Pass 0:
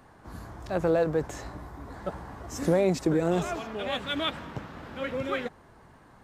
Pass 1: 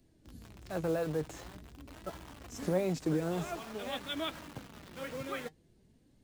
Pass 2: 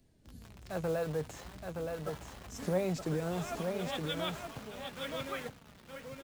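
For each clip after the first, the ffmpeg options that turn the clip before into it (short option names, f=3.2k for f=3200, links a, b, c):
-filter_complex "[0:a]acrossover=split=470|2600[a][b][c];[b]acrusher=bits=6:mix=0:aa=0.000001[d];[a][d][c]amix=inputs=3:normalize=0,flanger=delay=3:depth=3.7:regen=59:speed=0.47:shape=sinusoidal,volume=-3.5dB"
-af "equalizer=f=320:t=o:w=0.32:g=-7.5,aecho=1:1:920:0.562"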